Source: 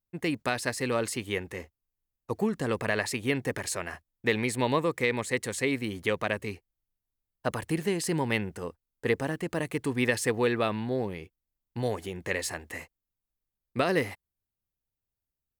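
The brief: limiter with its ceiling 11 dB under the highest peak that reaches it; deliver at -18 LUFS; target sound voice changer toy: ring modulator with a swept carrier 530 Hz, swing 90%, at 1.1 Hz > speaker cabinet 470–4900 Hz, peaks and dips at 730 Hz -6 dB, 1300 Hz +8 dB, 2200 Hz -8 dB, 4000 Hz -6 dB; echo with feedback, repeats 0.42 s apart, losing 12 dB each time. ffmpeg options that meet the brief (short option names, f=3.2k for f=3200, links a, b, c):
-af "alimiter=limit=-24dB:level=0:latency=1,aecho=1:1:420|840|1260:0.251|0.0628|0.0157,aeval=exprs='val(0)*sin(2*PI*530*n/s+530*0.9/1.1*sin(2*PI*1.1*n/s))':c=same,highpass=470,equalizer=f=730:t=q:w=4:g=-6,equalizer=f=1.3k:t=q:w=4:g=8,equalizer=f=2.2k:t=q:w=4:g=-8,equalizer=f=4k:t=q:w=4:g=-6,lowpass=f=4.9k:w=0.5412,lowpass=f=4.9k:w=1.3066,volume=20.5dB"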